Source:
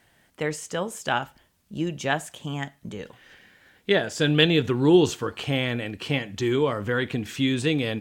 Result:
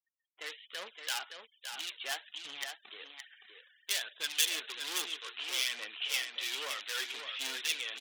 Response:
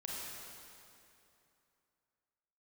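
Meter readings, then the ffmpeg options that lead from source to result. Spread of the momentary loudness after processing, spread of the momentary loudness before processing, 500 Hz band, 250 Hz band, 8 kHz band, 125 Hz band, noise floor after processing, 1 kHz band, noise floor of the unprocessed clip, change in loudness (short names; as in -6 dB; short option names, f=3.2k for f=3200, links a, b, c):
15 LU, 16 LU, -26.5 dB, -35.0 dB, +1.0 dB, under -40 dB, -81 dBFS, -14.5 dB, -64 dBFS, -10.5 dB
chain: -filter_complex "[0:a]aresample=8000,acrusher=bits=2:mode=log:mix=0:aa=0.000001,aresample=44100,dynaudnorm=f=120:g=7:m=5dB,aphaser=in_gain=1:out_gain=1:delay=3:decay=0.4:speed=1.2:type=triangular,asoftclip=type=hard:threshold=-18dB,highpass=390,aderivative,acrossover=split=1800[a][b];[a]aeval=exprs='val(0)*(1-0.5/2+0.5/2*cos(2*PI*2.4*n/s))':c=same[c];[b]aeval=exprs='val(0)*(1-0.5/2-0.5/2*cos(2*PI*2.4*n/s))':c=same[d];[c][d]amix=inputs=2:normalize=0,aecho=1:1:568:0.447,afftfilt=real='re*gte(hypot(re,im),0.00126)':imag='im*gte(hypot(re,im),0.00126)':win_size=1024:overlap=0.75,adynamicequalizer=threshold=0.00282:dfrequency=1600:dqfactor=0.7:tfrequency=1600:tqfactor=0.7:attack=5:release=100:ratio=0.375:range=2:mode=boostabove:tftype=highshelf"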